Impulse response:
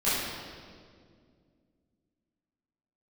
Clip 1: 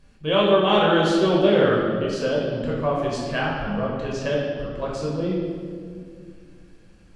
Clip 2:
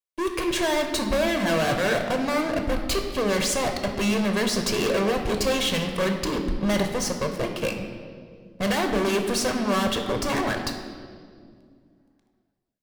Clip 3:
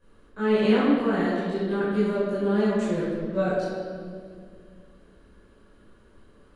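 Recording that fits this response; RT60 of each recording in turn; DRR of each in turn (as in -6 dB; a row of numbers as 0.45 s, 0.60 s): 3; 2.1 s, 2.1 s, 2.1 s; -4.0 dB, 4.5 dB, -13.5 dB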